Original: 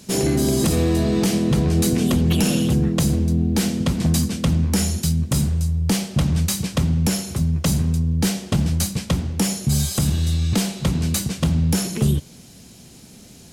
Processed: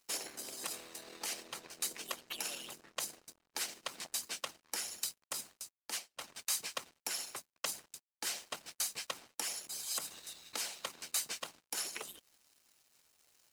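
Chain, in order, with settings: peak limiter -17 dBFS, peak gain reduction 7 dB; high-pass 820 Hz 12 dB/octave; harmonic-percussive split harmonic -16 dB; crossover distortion -51 dBFS; band-stop 3.4 kHz, Q 20; 5.78–6.20 s: upward expansion 2.5:1, over -51 dBFS; trim -2.5 dB

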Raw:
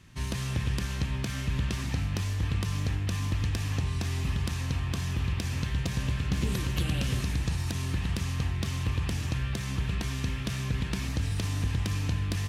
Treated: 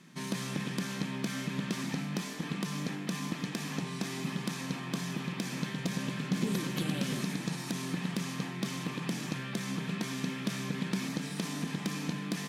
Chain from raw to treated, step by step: brick-wall FIR high-pass 150 Hz; bass shelf 300 Hz +7 dB; band-stop 2.8 kHz, Q 13; in parallel at -4.5 dB: saturation -31 dBFS, distortion -9 dB; on the sum: trim -4 dB

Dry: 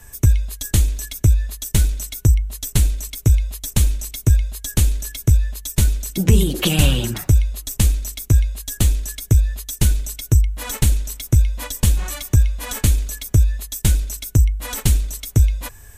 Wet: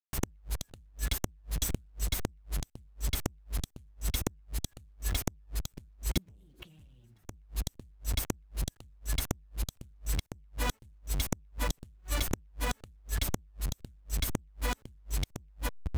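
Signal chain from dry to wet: send-on-delta sampling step -30 dBFS; hard clipper -14.5 dBFS, distortion -9 dB; peaking EQ 85 Hz +11 dB 2.2 oct; compression 5:1, threshold -19 dBFS, peak gain reduction 12.5 dB; treble shelf 4.7 kHz -5.5 dB; inverted gate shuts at -17 dBFS, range -36 dB

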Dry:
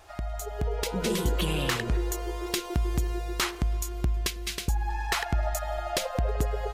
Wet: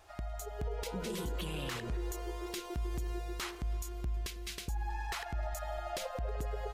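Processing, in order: peak limiter -22 dBFS, peak gain reduction 7.5 dB; trim -7 dB

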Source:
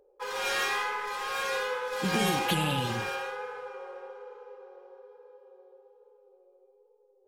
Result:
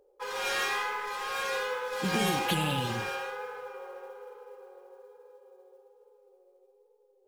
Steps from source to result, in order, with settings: modulation noise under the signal 29 dB; trim -1 dB

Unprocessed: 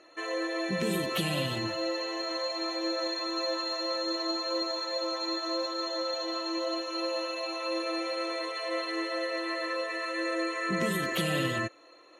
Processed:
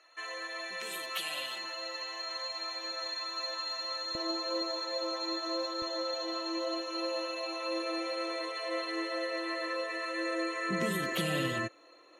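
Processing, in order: high-pass 930 Hz 12 dB/octave, from 4.15 s 190 Hz, from 5.82 s 92 Hz; trim -2.5 dB

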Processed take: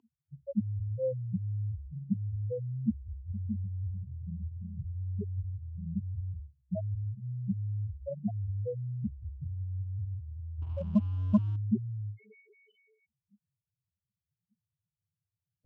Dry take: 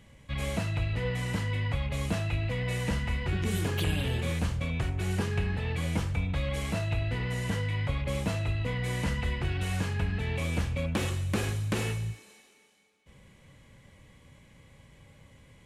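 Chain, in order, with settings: hum notches 60/120/180/240/300/360 Hz; loudest bins only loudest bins 2; peaking EQ 270 Hz +11.5 dB 1.5 oct; 10.62–11.56 s: waveshaping leveller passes 1; spectral noise reduction 28 dB; cabinet simulation 140–9200 Hz, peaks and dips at 150 Hz -8 dB, 990 Hz +10 dB, 1.9 kHz -8 dB, 2.9 kHz +10 dB; warped record 33 1/3 rpm, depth 100 cents; trim +4 dB

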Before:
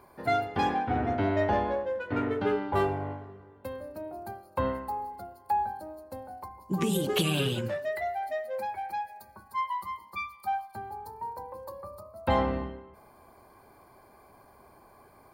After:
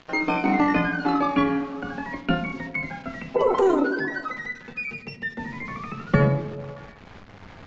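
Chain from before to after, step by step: pitch bend over the whole clip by +7.5 st ending unshifted; tilt EQ -4.5 dB/octave; in parallel at 0 dB: compression, threshold -37 dBFS, peak gain reduction 23 dB; on the sum: small samples zeroed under -40 dBFS; wide varispeed 2×; distance through air 120 m; repeats whose band climbs or falls 125 ms, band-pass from 190 Hz, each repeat 0.7 oct, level -9 dB; on a send at -8.5 dB: reverberation RT60 0.80 s, pre-delay 8 ms; on the sum: resampled via 16 kHz

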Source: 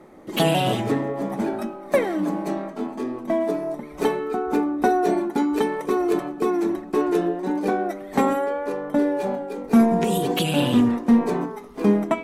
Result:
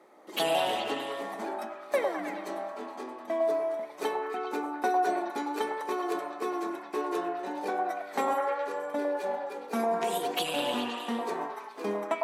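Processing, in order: high-pass 460 Hz 12 dB/octave; peaking EQ 4.3 kHz +2.5 dB; on a send: repeats whose band climbs or falls 104 ms, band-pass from 810 Hz, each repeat 0.7 oct, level 0 dB; on the sum: trim -6.5 dB

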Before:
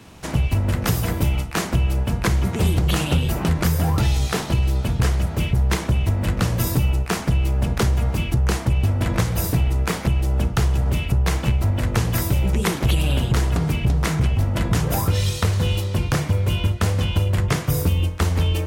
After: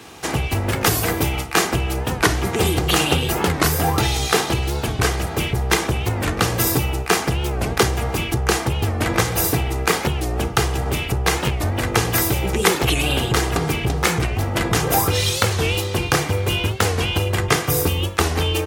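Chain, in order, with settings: high-pass 310 Hz 6 dB/octave; comb 2.5 ms, depth 40%; warped record 45 rpm, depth 160 cents; trim +7 dB

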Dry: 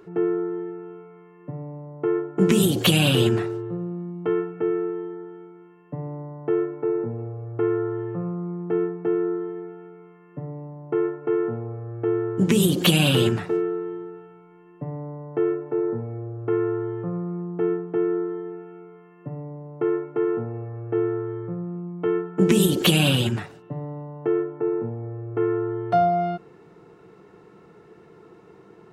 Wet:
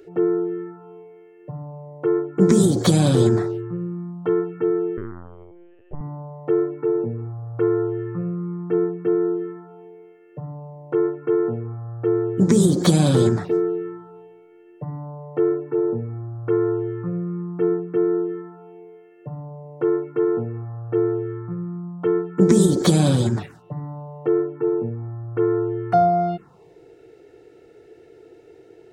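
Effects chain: 4.97–6.01 s: LPC vocoder at 8 kHz pitch kept; touch-sensitive phaser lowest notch 160 Hz, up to 2.8 kHz, full sweep at -20 dBFS; trim +3.5 dB

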